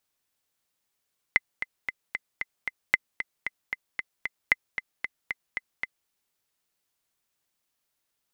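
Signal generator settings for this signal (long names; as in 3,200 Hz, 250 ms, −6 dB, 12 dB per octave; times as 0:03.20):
click track 228 BPM, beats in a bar 6, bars 3, 2,050 Hz, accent 10.5 dB −5.5 dBFS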